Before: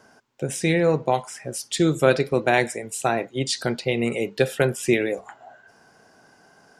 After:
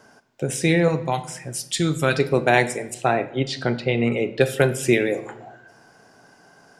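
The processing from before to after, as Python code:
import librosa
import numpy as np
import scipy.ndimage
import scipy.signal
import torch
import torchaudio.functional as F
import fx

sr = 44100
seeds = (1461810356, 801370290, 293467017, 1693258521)

y = fx.peak_eq(x, sr, hz=470.0, db=-8.0, octaves=1.6, at=(0.88, 2.19))
y = fx.lowpass(y, sr, hz=3500.0, slope=12, at=(2.94, 4.41))
y = fx.room_shoebox(y, sr, seeds[0], volume_m3=370.0, walls='mixed', distance_m=0.31)
y = F.gain(torch.from_numpy(y), 2.0).numpy()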